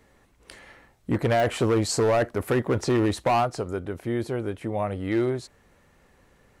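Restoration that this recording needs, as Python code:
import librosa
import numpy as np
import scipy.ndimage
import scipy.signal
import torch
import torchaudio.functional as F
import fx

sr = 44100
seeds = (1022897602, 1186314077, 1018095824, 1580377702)

y = fx.fix_declip(x, sr, threshold_db=-17.0)
y = fx.fix_declick_ar(y, sr, threshold=10.0)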